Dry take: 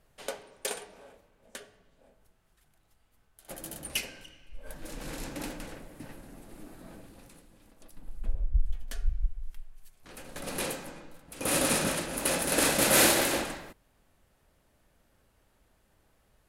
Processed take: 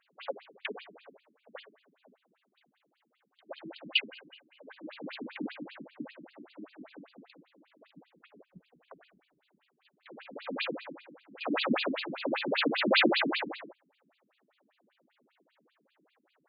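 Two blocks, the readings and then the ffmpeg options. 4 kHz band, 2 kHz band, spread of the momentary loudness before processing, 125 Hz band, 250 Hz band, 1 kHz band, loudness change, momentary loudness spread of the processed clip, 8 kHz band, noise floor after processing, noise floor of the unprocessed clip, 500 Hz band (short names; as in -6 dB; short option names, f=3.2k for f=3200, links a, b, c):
0.0 dB, -0.5 dB, 25 LU, -11.5 dB, +0.5 dB, -2.0 dB, -2.5 dB, 24 LU, under -40 dB, -76 dBFS, -69 dBFS, -2.0 dB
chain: -af "afftfilt=real='re*between(b*sr/1024,230*pow(3500/230,0.5+0.5*sin(2*PI*5.1*pts/sr))/1.41,230*pow(3500/230,0.5+0.5*sin(2*PI*5.1*pts/sr))*1.41)':imag='im*between(b*sr/1024,230*pow(3500/230,0.5+0.5*sin(2*PI*5.1*pts/sr))/1.41,230*pow(3500/230,0.5+0.5*sin(2*PI*5.1*pts/sr))*1.41)':win_size=1024:overlap=0.75,volume=7dB"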